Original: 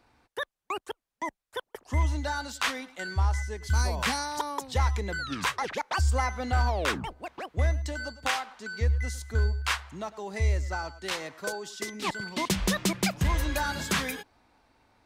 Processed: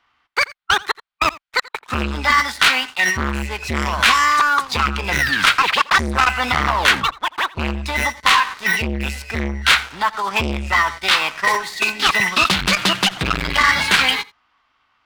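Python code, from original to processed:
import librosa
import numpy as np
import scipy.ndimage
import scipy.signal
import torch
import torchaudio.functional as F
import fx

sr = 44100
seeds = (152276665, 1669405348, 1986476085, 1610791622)

p1 = scipy.signal.sosfilt(scipy.signal.butter(2, 7600.0, 'lowpass', fs=sr, output='sos'), x)
p2 = fx.band_shelf(p1, sr, hz=1600.0, db=14.5, octaves=2.6)
p3 = fx.notch(p2, sr, hz=1700.0, q=23.0)
p4 = fx.leveller(p3, sr, passes=3)
p5 = fx.formant_shift(p4, sr, semitones=4)
p6 = p5 + fx.echo_single(p5, sr, ms=84, db=-22.0, dry=0)
p7 = fx.transformer_sat(p6, sr, knee_hz=1000.0)
y = F.gain(torch.from_numpy(p7), -4.0).numpy()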